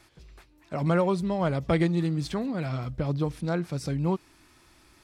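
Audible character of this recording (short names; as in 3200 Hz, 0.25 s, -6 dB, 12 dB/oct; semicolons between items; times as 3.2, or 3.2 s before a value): noise floor -60 dBFS; spectral tilt -6.5 dB/oct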